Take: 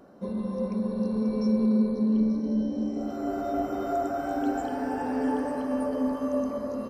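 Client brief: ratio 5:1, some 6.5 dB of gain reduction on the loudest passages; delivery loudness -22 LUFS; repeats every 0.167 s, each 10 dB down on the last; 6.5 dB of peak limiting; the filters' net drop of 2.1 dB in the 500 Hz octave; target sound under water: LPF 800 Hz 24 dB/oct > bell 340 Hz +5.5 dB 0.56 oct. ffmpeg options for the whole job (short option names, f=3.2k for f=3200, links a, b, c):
-af "equalizer=f=500:t=o:g=-4,acompressor=threshold=-28dB:ratio=5,alimiter=level_in=3dB:limit=-24dB:level=0:latency=1,volume=-3dB,lowpass=f=800:w=0.5412,lowpass=f=800:w=1.3066,equalizer=f=340:t=o:w=0.56:g=5.5,aecho=1:1:167|334|501|668:0.316|0.101|0.0324|0.0104,volume=11dB"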